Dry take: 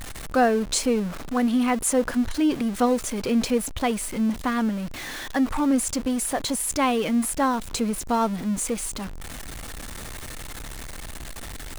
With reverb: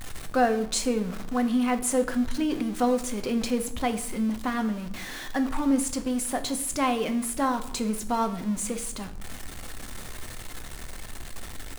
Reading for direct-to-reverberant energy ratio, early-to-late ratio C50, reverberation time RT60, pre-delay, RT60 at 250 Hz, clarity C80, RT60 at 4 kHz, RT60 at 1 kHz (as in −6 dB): 7.5 dB, 13.5 dB, 0.70 s, 3 ms, 0.85 s, 16.5 dB, 0.50 s, 0.65 s